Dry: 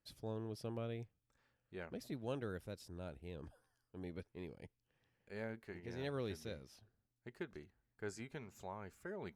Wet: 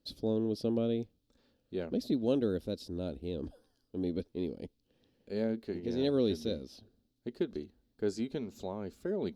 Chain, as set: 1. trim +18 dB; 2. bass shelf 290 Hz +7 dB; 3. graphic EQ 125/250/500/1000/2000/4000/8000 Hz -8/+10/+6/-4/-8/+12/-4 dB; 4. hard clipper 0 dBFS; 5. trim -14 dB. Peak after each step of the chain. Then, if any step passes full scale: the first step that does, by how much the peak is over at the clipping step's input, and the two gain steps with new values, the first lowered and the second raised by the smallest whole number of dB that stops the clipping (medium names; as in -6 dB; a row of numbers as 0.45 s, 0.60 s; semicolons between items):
-11.0 dBFS, -7.5 dBFS, -4.5 dBFS, -4.5 dBFS, -18.5 dBFS; nothing clips